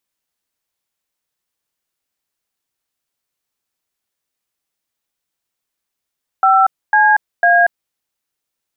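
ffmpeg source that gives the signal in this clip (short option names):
-f lavfi -i "aevalsrc='0.299*clip(min(mod(t,0.5),0.236-mod(t,0.5))/0.002,0,1)*(eq(floor(t/0.5),0)*(sin(2*PI*770*mod(t,0.5))+sin(2*PI*1336*mod(t,0.5)))+eq(floor(t/0.5),1)*(sin(2*PI*852*mod(t,0.5))+sin(2*PI*1633*mod(t,0.5)))+eq(floor(t/0.5),2)*(sin(2*PI*697*mod(t,0.5))+sin(2*PI*1633*mod(t,0.5))))':d=1.5:s=44100"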